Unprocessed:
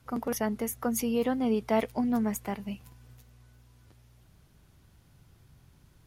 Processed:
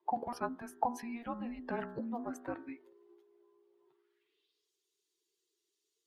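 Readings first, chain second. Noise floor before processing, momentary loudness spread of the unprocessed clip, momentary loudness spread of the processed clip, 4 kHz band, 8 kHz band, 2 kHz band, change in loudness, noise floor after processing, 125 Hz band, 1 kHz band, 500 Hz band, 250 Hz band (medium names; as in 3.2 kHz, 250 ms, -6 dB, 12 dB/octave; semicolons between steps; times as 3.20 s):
-61 dBFS, 9 LU, 7 LU, under -10 dB, -18.5 dB, -6.5 dB, -10.0 dB, -85 dBFS, -11.5 dB, -1.5 dB, -11.5 dB, -12.0 dB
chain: expander on every frequency bin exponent 1.5; bass shelf 180 Hz -9.5 dB; de-hum 73.1 Hz, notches 32; compression, threshold -33 dBFS, peak gain reduction 7.5 dB; frequency shift -470 Hz; band-pass sweep 800 Hz -> 6.6 kHz, 3.85–4.71 s; trim +14 dB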